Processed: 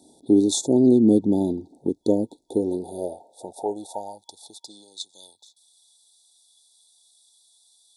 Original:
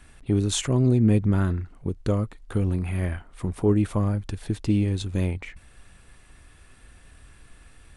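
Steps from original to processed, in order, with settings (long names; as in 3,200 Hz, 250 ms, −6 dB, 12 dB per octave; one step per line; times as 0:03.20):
brick-wall band-stop 930–3,400 Hz
high-pass filter sweep 290 Hz → 2,500 Hz, 0:02.36–0:05.49
0:04.66–0:05.23: Chebyshev band-pass filter 130–8,700 Hz, order 3
level +2.5 dB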